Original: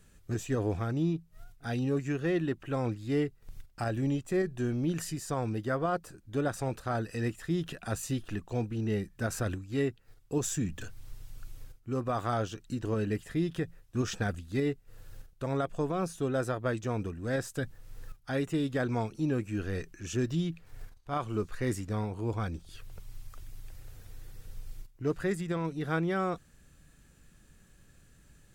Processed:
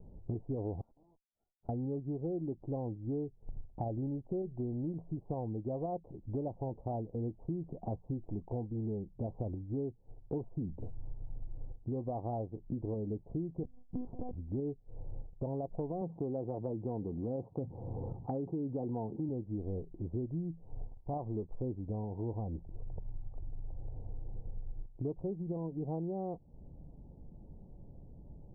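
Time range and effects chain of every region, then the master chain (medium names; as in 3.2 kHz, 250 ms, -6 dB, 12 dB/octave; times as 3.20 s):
0.81–1.69 s: brick-wall FIR band-pass 1.3–4.4 kHz + valve stage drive 51 dB, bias 0.65
13.63–14.35 s: compression 2.5:1, threshold -31 dBFS + monotone LPC vocoder at 8 kHz 250 Hz
16.01–19.29 s: band-pass 120–4900 Hz + band-stop 620 Hz, Q 9.1 + level flattener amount 50%
whole clip: steep low-pass 900 Hz 72 dB/octave; compression 5:1, threshold -44 dBFS; trim +8 dB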